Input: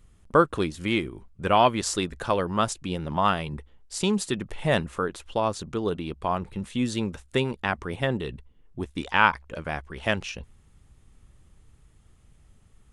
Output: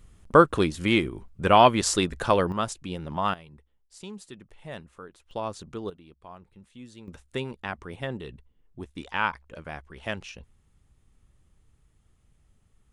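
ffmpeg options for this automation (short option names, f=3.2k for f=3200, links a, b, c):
-af "asetnsamples=n=441:p=0,asendcmd='2.52 volume volume -4dB;3.34 volume volume -16.5dB;5.31 volume volume -7dB;5.9 volume volume -19dB;7.08 volume volume -7dB',volume=3dB"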